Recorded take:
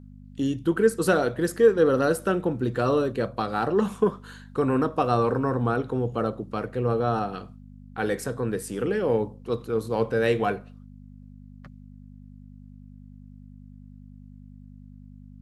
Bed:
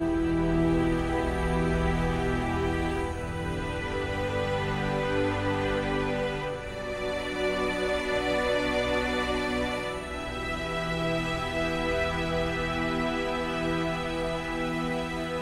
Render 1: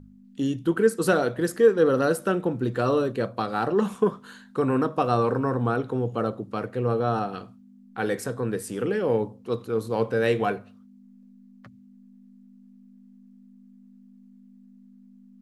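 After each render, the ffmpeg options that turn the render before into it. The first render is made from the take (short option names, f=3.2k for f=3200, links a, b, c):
-af "bandreject=f=50:t=h:w=4,bandreject=f=100:t=h:w=4,bandreject=f=150:t=h:w=4"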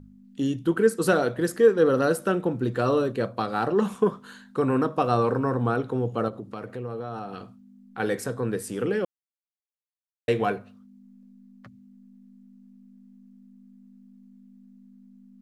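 -filter_complex "[0:a]asettb=1/sr,asplit=3[a][b][c];[a]atrim=end=6.284[d];[b]atrim=start=6.28:end=8,asetpts=PTS-STARTPTS,afade=t=in:d=0.004:c=qsin,afade=t=out:st=1.716:d=0.004:c=qsin,acompressor=threshold=-32dB:ratio=3:attack=3.2:release=140:knee=1:detection=peak[e];[c]atrim=start=7.996[f];[d][e]acrossfade=d=0.004:c1=hsin:c2=qsin[g];[g][f]acrossfade=d=0.004:c1=qsin:c2=hsin,asplit=3[h][i][j];[h]atrim=end=9.05,asetpts=PTS-STARTPTS,afade=t=out:st=9.046:d=0.004:c=hsin[k];[i]atrim=start=9.05:end=10.28,asetpts=PTS-STARTPTS,volume=0[l];[j]atrim=start=10.28,asetpts=PTS-STARTPTS,afade=t=in:d=0.004:c=hsin[m];[k][l][m]concat=n=3:v=0:a=1"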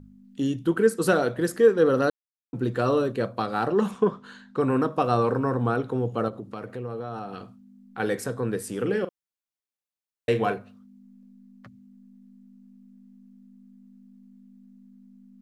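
-filter_complex "[0:a]asettb=1/sr,asplit=3[a][b][c];[a]atrim=end=3.914[d];[b]atrim=start=3.91:end=4.6,asetpts=PTS-STARTPTS,afade=t=in:d=0.004:c=qsin,afade=t=out:st=0.686:d=0.004:c=qsin,lowpass=5.8k[e];[c]atrim=start=4.596[f];[d][e]acrossfade=d=0.004:c1=hsin:c2=qsin[g];[g][f]acrossfade=d=0.004:c1=qsin:c2=hsin,asettb=1/sr,asplit=3[h][i][j];[h]atrim=end=8.824[k];[i]atrim=start=8.82:end=10.54,asetpts=PTS-STARTPTS,afade=t=in:d=0.004:c=qsin,afade=t=out:st=1.716:d=0.004:c=qsin,asplit=2[l][m];[m]adelay=41,volume=-11.5dB[n];[l][n]amix=inputs=2:normalize=0,atrim=end_sample=75852[o];[j]atrim=start=10.536[p];[k][o]acrossfade=d=0.004:c1=hsin:c2=qsin[q];[q][p]acrossfade=d=0.004:c1=qsin:c2=hsin,asplit=3[r][s][t];[r]atrim=end=2.1,asetpts=PTS-STARTPTS,afade=t=out:st=2.096:d=0.004:c=hsin[u];[s]atrim=start=2.1:end=2.53,asetpts=PTS-STARTPTS,volume=0[v];[t]atrim=start=2.53,asetpts=PTS-STARTPTS,afade=t=in:d=0.004:c=hsin[w];[u][v][w]concat=n=3:v=0:a=1"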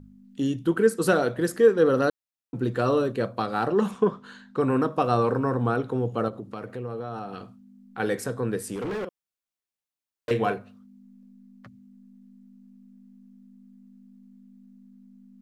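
-filter_complex "[0:a]asettb=1/sr,asplit=3[a][b][c];[a]atrim=end=8.754[d];[b]atrim=start=8.75:end=10.31,asetpts=PTS-STARTPTS,afade=t=in:d=0.004:c=qsin,afade=t=out:st=1.556:d=0.004:c=qsin,asoftclip=type=hard:threshold=-28dB[e];[c]atrim=start=10.306[f];[d][e]acrossfade=d=0.004:c1=hsin:c2=qsin[g];[g][f]acrossfade=d=0.004:c1=qsin:c2=hsin"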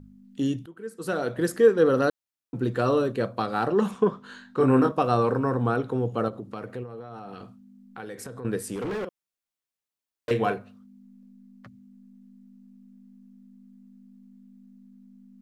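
-filter_complex "[0:a]asettb=1/sr,asplit=3[a][b][c];[a]atrim=end=4.274[d];[b]atrim=start=4.27:end=4.92,asetpts=PTS-STARTPTS,afade=t=in:d=0.004:c=qsin,afade=t=out:st=0.646:d=0.004:c=qsin,asplit=2[e][f];[f]adelay=23,volume=-2.5dB[g];[e][g]amix=inputs=2:normalize=0,atrim=end_sample=28665[h];[c]atrim=start=4.916[i];[d][h]acrossfade=d=0.004:c1=hsin:c2=qsin[j];[j][i]acrossfade=d=0.004:c1=qsin:c2=hsin,asettb=1/sr,asplit=3[k][l][m];[k]atrim=end=6.834[n];[l]atrim=start=6.83:end=8.45,asetpts=PTS-STARTPTS,afade=t=in:d=0.004:c=qsin,afade=t=out:st=1.616:d=0.004:c=qsin,acompressor=threshold=-35dB:ratio=6:attack=3.2:release=140:knee=1:detection=peak[o];[m]atrim=start=8.446[p];[n][o]acrossfade=d=0.004:c1=hsin:c2=qsin[q];[q][p]acrossfade=d=0.004:c1=qsin:c2=hsin,asplit=2[r][s];[r]atrim=end=0.66,asetpts=PTS-STARTPTS,afade=t=out:st=0.656:d=0.004:c=hsin:silence=0.0707946[t];[s]atrim=start=0.66,asetpts=PTS-STARTPTS,afade=t=in:d=0.74:c=qua:silence=0.0707946[u];[t][u]concat=n=2:v=0:a=1"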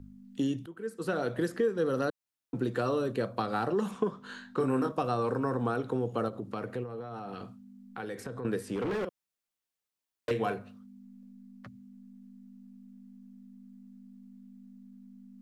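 -filter_complex "[0:a]acrossover=split=190|4500[a][b][c];[a]acompressor=threshold=-40dB:ratio=4[d];[b]acompressor=threshold=-28dB:ratio=4[e];[c]acompressor=threshold=-54dB:ratio=4[f];[d][e][f]amix=inputs=3:normalize=0"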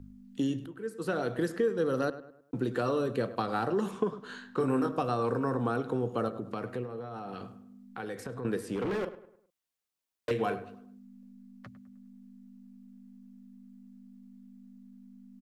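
-filter_complex "[0:a]asplit=2[a][b];[b]adelay=103,lowpass=f=2.4k:p=1,volume=-14dB,asplit=2[c][d];[d]adelay=103,lowpass=f=2.4k:p=1,volume=0.41,asplit=2[e][f];[f]adelay=103,lowpass=f=2.4k:p=1,volume=0.41,asplit=2[g][h];[h]adelay=103,lowpass=f=2.4k:p=1,volume=0.41[i];[a][c][e][g][i]amix=inputs=5:normalize=0"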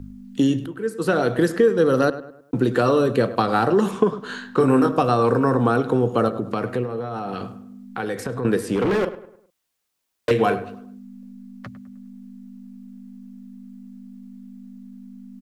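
-af "volume=11.5dB"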